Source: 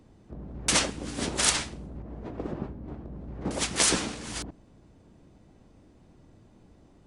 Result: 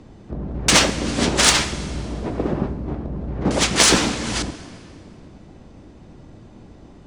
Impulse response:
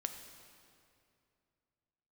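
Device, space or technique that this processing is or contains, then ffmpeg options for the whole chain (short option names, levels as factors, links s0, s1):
saturated reverb return: -filter_complex "[0:a]lowpass=7200,asplit=2[s0][s1];[1:a]atrim=start_sample=2205[s2];[s1][s2]afir=irnorm=-1:irlink=0,asoftclip=type=tanh:threshold=0.0596,volume=1[s3];[s0][s3]amix=inputs=2:normalize=0,volume=2.24"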